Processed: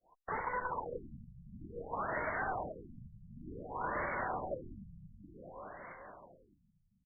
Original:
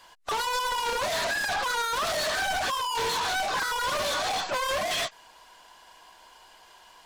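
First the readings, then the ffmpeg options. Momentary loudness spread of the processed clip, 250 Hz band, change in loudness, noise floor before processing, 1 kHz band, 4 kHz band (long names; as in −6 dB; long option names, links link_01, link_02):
18 LU, −2.5 dB, −12.5 dB, −55 dBFS, −11.5 dB, below −40 dB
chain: -af "agate=range=-33dB:threshold=-43dB:ratio=3:detection=peak,lowshelf=frequency=77:gain=-2,acompressor=threshold=-48dB:ratio=1.5,aeval=exprs='(mod(53.1*val(0)+1,2)-1)/53.1':channel_layout=same,aecho=1:1:428|856|1284|1712|2140|2568|2996:0.447|0.255|0.145|0.0827|0.0472|0.0269|0.0153,afftfilt=real='re*lt(b*sr/1024,200*pow(2300/200,0.5+0.5*sin(2*PI*0.55*pts/sr)))':imag='im*lt(b*sr/1024,200*pow(2300/200,0.5+0.5*sin(2*PI*0.55*pts/sr)))':win_size=1024:overlap=0.75,volume=5dB"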